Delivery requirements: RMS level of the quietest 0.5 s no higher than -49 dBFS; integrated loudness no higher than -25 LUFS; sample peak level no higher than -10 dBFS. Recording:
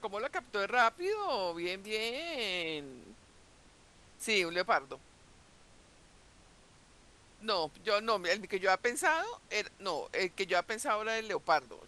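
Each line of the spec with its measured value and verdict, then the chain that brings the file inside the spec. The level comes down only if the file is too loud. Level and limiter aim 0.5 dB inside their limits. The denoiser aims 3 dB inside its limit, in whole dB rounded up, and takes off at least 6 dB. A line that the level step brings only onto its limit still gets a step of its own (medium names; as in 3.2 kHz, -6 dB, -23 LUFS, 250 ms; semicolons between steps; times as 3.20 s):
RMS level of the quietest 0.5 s -61 dBFS: pass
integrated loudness -33.0 LUFS: pass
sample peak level -14.5 dBFS: pass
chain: none needed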